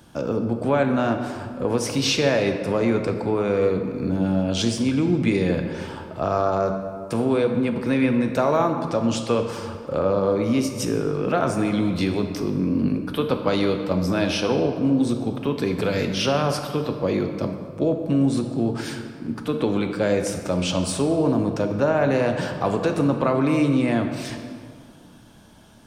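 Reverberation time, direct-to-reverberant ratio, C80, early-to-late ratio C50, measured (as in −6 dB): 2.1 s, 5.0 dB, 8.0 dB, 6.5 dB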